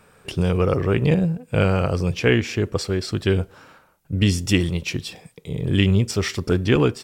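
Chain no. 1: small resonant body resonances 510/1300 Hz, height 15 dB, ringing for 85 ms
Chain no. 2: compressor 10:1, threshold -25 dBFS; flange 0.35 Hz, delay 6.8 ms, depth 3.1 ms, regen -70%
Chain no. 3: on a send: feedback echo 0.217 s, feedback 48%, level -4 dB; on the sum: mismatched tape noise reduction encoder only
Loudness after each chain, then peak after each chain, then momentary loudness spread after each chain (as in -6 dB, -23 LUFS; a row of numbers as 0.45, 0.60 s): -19.0, -34.5, -20.0 LUFS; -2.5, -18.5, -3.0 dBFS; 14, 6, 10 LU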